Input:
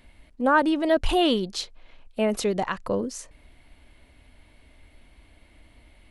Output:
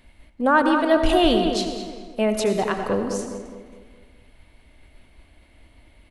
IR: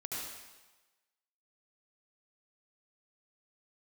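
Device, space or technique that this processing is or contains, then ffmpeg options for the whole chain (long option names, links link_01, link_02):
keyed gated reverb: -filter_complex "[0:a]asplit=3[link_01][link_02][link_03];[1:a]atrim=start_sample=2205[link_04];[link_02][link_04]afir=irnorm=-1:irlink=0[link_05];[link_03]apad=whole_len=269374[link_06];[link_05][link_06]sidechaingate=range=-33dB:threshold=-49dB:ratio=16:detection=peak,volume=-6.5dB[link_07];[link_01][link_07]amix=inputs=2:normalize=0,asplit=2[link_08][link_09];[link_09]adelay=208,lowpass=frequency=1900:poles=1,volume=-6dB,asplit=2[link_10][link_11];[link_11]adelay=208,lowpass=frequency=1900:poles=1,volume=0.46,asplit=2[link_12][link_13];[link_13]adelay=208,lowpass=frequency=1900:poles=1,volume=0.46,asplit=2[link_14][link_15];[link_15]adelay=208,lowpass=frequency=1900:poles=1,volume=0.46,asplit=2[link_16][link_17];[link_17]adelay=208,lowpass=frequency=1900:poles=1,volume=0.46,asplit=2[link_18][link_19];[link_19]adelay=208,lowpass=frequency=1900:poles=1,volume=0.46[link_20];[link_08][link_10][link_12][link_14][link_16][link_18][link_20]amix=inputs=7:normalize=0"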